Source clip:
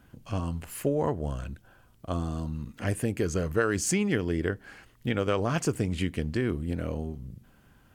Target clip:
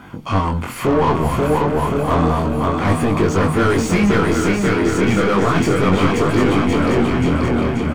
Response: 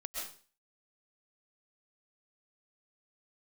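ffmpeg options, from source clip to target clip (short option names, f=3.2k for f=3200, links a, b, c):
-filter_complex "[0:a]aecho=1:1:0.9:0.41,asplit=2[a][b];[b]aecho=0:1:533|1066|1599|2132|2665|3198:0.562|0.281|0.141|0.0703|0.0351|0.0176[c];[a][c]amix=inputs=2:normalize=0,asplit=2[d][e];[e]highpass=f=720:p=1,volume=31dB,asoftclip=type=tanh:threshold=-11dB[f];[d][f]amix=inputs=2:normalize=0,lowpass=f=1k:p=1,volume=-6dB,asplit=2[g][h];[h]aecho=0:1:751:0.501[i];[g][i]amix=inputs=2:normalize=0,flanger=delay=20:depth=6.5:speed=0.31,volume=7dB"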